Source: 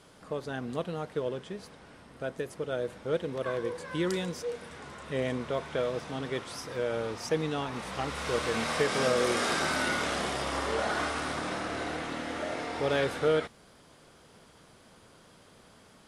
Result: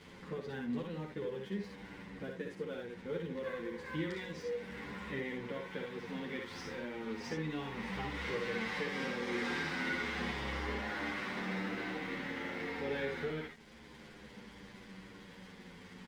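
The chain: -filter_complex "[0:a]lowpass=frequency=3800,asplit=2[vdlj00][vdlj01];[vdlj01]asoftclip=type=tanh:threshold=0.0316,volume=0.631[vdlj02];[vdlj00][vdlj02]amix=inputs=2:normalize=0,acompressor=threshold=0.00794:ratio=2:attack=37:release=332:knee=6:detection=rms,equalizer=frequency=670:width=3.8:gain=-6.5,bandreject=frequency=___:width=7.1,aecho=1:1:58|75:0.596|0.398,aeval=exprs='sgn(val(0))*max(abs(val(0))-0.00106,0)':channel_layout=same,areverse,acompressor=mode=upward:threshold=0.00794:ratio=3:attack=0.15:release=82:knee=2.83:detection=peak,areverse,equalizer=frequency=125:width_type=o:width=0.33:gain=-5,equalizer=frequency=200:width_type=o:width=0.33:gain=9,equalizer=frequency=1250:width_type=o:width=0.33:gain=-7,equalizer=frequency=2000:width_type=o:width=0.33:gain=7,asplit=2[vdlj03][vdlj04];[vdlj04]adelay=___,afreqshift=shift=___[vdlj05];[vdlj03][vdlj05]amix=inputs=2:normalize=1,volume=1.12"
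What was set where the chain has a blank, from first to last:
640, 9, -0.31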